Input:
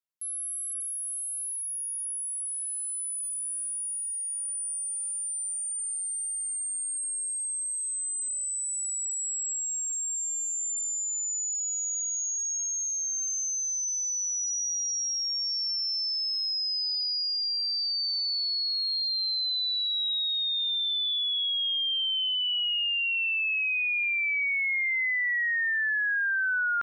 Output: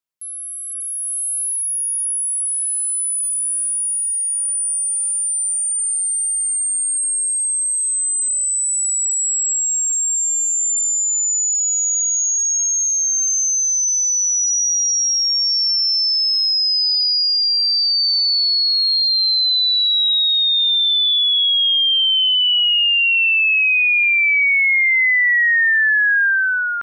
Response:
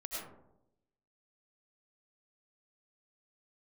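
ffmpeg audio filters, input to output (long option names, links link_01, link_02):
-af "dynaudnorm=framelen=640:gausssize=3:maxgain=9dB,volume=3.5dB"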